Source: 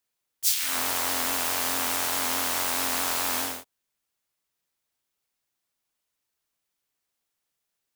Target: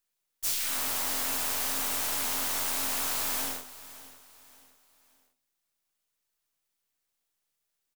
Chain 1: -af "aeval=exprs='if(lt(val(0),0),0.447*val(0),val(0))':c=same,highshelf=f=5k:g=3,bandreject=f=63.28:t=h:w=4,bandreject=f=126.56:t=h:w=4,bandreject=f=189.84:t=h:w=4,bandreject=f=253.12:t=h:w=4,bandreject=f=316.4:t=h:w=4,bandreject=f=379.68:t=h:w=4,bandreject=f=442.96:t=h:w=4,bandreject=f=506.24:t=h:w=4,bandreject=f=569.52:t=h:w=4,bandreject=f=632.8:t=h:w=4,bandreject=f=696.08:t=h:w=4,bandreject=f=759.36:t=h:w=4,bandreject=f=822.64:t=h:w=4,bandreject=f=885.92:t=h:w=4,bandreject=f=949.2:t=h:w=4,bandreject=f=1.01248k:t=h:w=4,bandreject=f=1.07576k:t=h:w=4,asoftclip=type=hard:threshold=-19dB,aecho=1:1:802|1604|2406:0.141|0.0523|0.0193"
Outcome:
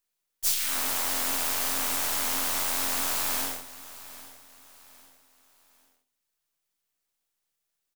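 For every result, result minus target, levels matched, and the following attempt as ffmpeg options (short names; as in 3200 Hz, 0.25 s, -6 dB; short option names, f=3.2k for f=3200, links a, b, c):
echo 0.23 s late; hard clip: distortion -8 dB
-af "aeval=exprs='if(lt(val(0),0),0.447*val(0),val(0))':c=same,highshelf=f=5k:g=3,bandreject=f=63.28:t=h:w=4,bandreject=f=126.56:t=h:w=4,bandreject=f=189.84:t=h:w=4,bandreject=f=253.12:t=h:w=4,bandreject=f=316.4:t=h:w=4,bandreject=f=379.68:t=h:w=4,bandreject=f=442.96:t=h:w=4,bandreject=f=506.24:t=h:w=4,bandreject=f=569.52:t=h:w=4,bandreject=f=632.8:t=h:w=4,bandreject=f=696.08:t=h:w=4,bandreject=f=759.36:t=h:w=4,bandreject=f=822.64:t=h:w=4,bandreject=f=885.92:t=h:w=4,bandreject=f=949.2:t=h:w=4,bandreject=f=1.01248k:t=h:w=4,bandreject=f=1.07576k:t=h:w=4,asoftclip=type=hard:threshold=-19dB,aecho=1:1:572|1144|1716:0.141|0.0523|0.0193"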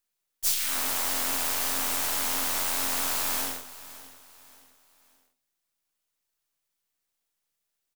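hard clip: distortion -8 dB
-af "aeval=exprs='if(lt(val(0),0),0.447*val(0),val(0))':c=same,highshelf=f=5k:g=3,bandreject=f=63.28:t=h:w=4,bandreject=f=126.56:t=h:w=4,bandreject=f=189.84:t=h:w=4,bandreject=f=253.12:t=h:w=4,bandreject=f=316.4:t=h:w=4,bandreject=f=379.68:t=h:w=4,bandreject=f=442.96:t=h:w=4,bandreject=f=506.24:t=h:w=4,bandreject=f=569.52:t=h:w=4,bandreject=f=632.8:t=h:w=4,bandreject=f=696.08:t=h:w=4,bandreject=f=759.36:t=h:w=4,bandreject=f=822.64:t=h:w=4,bandreject=f=885.92:t=h:w=4,bandreject=f=949.2:t=h:w=4,bandreject=f=1.01248k:t=h:w=4,bandreject=f=1.07576k:t=h:w=4,asoftclip=type=hard:threshold=-26.5dB,aecho=1:1:572|1144|1716:0.141|0.0523|0.0193"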